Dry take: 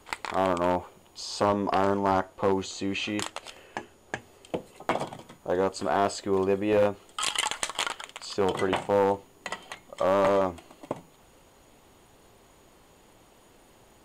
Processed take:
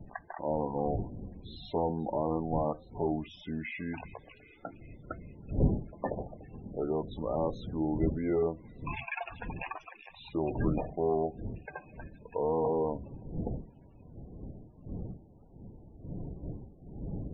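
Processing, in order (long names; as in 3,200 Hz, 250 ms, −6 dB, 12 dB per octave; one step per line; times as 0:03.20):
wind on the microphone 240 Hz −34 dBFS
speed change −19%
high-frequency loss of the air 170 metres
on a send: delay with a high-pass on its return 391 ms, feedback 72%, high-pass 3,200 Hz, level −9 dB
on the sum: spectral peaks only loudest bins 32
level −6 dB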